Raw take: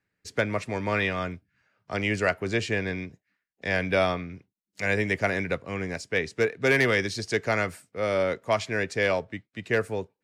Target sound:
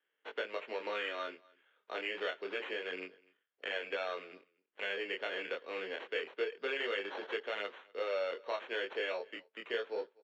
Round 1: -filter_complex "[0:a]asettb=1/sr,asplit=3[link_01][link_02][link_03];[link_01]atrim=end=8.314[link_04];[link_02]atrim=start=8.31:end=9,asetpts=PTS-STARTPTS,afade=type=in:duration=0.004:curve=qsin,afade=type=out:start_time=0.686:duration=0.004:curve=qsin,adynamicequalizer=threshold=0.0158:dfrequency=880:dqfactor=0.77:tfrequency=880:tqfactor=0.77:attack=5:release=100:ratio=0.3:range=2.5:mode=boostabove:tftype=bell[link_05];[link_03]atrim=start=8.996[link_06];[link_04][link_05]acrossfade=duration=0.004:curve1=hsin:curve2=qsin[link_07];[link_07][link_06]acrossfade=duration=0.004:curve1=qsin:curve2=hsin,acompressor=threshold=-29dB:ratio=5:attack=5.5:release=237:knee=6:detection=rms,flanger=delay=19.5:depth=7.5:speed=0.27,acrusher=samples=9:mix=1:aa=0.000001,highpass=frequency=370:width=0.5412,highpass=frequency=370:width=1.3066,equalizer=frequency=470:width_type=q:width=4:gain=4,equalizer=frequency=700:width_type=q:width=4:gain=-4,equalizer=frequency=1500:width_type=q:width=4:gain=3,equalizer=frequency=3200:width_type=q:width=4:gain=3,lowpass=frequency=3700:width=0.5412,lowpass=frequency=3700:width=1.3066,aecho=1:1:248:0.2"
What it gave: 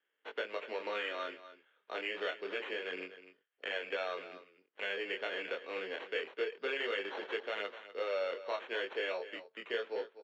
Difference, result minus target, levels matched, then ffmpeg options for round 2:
echo-to-direct +11.5 dB
-filter_complex "[0:a]asettb=1/sr,asplit=3[link_01][link_02][link_03];[link_01]atrim=end=8.314[link_04];[link_02]atrim=start=8.31:end=9,asetpts=PTS-STARTPTS,afade=type=in:duration=0.004:curve=qsin,afade=type=out:start_time=0.686:duration=0.004:curve=qsin,adynamicequalizer=threshold=0.0158:dfrequency=880:dqfactor=0.77:tfrequency=880:tqfactor=0.77:attack=5:release=100:ratio=0.3:range=2.5:mode=boostabove:tftype=bell[link_05];[link_03]atrim=start=8.996[link_06];[link_04][link_05]acrossfade=duration=0.004:curve1=hsin:curve2=qsin[link_07];[link_07][link_06]acrossfade=duration=0.004:curve1=qsin:curve2=hsin,acompressor=threshold=-29dB:ratio=5:attack=5.5:release=237:knee=6:detection=rms,flanger=delay=19.5:depth=7.5:speed=0.27,acrusher=samples=9:mix=1:aa=0.000001,highpass=frequency=370:width=0.5412,highpass=frequency=370:width=1.3066,equalizer=frequency=470:width_type=q:width=4:gain=4,equalizer=frequency=700:width_type=q:width=4:gain=-4,equalizer=frequency=1500:width_type=q:width=4:gain=3,equalizer=frequency=3200:width_type=q:width=4:gain=3,lowpass=frequency=3700:width=0.5412,lowpass=frequency=3700:width=1.3066,aecho=1:1:248:0.0531"

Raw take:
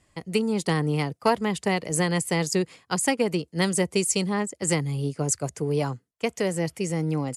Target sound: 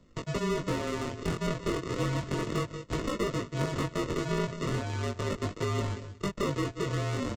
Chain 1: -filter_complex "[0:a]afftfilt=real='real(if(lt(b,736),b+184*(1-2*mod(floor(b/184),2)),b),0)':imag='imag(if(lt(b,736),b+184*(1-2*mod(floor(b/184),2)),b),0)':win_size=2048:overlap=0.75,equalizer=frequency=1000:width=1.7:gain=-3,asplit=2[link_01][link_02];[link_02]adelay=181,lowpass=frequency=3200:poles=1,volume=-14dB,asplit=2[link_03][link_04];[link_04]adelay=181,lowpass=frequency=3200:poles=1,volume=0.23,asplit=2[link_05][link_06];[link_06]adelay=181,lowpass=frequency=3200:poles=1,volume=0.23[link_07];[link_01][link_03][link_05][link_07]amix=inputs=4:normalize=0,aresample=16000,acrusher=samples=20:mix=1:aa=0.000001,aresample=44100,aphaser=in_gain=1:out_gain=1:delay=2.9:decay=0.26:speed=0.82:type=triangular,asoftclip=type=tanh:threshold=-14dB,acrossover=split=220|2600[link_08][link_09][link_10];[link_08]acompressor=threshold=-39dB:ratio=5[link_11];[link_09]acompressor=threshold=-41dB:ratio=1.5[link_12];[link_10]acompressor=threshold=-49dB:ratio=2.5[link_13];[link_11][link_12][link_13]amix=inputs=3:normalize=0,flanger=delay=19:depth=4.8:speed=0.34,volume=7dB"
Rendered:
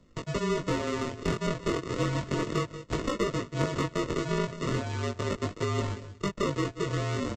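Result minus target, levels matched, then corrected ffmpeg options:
soft clipping: distortion −9 dB
-filter_complex "[0:a]afftfilt=real='real(if(lt(b,736),b+184*(1-2*mod(floor(b/184),2)),b),0)':imag='imag(if(lt(b,736),b+184*(1-2*mod(floor(b/184),2)),b),0)':win_size=2048:overlap=0.75,equalizer=frequency=1000:width=1.7:gain=-3,asplit=2[link_01][link_02];[link_02]adelay=181,lowpass=frequency=3200:poles=1,volume=-14dB,asplit=2[link_03][link_04];[link_04]adelay=181,lowpass=frequency=3200:poles=1,volume=0.23,asplit=2[link_05][link_06];[link_06]adelay=181,lowpass=frequency=3200:poles=1,volume=0.23[link_07];[link_01][link_03][link_05][link_07]amix=inputs=4:normalize=0,aresample=16000,acrusher=samples=20:mix=1:aa=0.000001,aresample=44100,aphaser=in_gain=1:out_gain=1:delay=2.9:decay=0.26:speed=0.82:type=triangular,asoftclip=type=tanh:threshold=-22.5dB,acrossover=split=220|2600[link_08][link_09][link_10];[link_08]acompressor=threshold=-39dB:ratio=5[link_11];[link_09]acompressor=threshold=-41dB:ratio=1.5[link_12];[link_10]acompressor=threshold=-49dB:ratio=2.5[link_13];[link_11][link_12][link_13]amix=inputs=3:normalize=0,flanger=delay=19:depth=4.8:speed=0.34,volume=7dB"

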